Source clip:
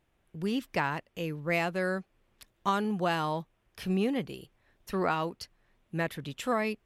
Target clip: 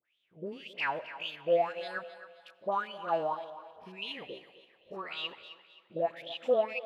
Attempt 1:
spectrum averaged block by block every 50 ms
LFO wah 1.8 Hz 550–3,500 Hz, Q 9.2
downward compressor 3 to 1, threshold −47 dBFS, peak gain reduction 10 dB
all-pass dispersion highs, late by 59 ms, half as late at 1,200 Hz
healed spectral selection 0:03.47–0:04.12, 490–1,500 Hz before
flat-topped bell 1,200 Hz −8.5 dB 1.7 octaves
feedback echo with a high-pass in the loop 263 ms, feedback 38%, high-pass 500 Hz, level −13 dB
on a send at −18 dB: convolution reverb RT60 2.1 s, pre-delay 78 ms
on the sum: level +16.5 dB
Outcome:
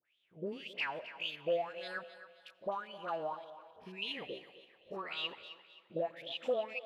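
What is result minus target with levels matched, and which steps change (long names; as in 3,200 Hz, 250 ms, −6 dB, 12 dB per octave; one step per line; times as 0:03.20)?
downward compressor: peak gain reduction +10 dB
remove: downward compressor 3 to 1, threshold −47 dBFS, peak gain reduction 10 dB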